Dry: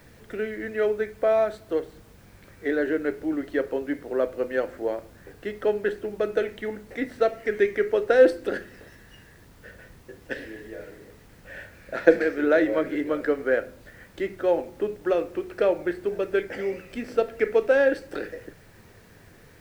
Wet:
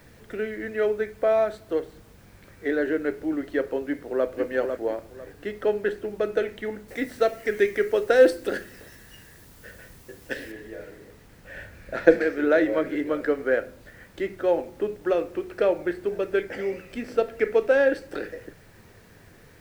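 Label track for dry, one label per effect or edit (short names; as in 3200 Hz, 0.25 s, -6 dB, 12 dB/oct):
3.840000	4.260000	echo throw 0.5 s, feedback 25%, level -6 dB
6.880000	10.520000	high shelf 4900 Hz +10 dB
11.560000	12.150000	low shelf 130 Hz +7.5 dB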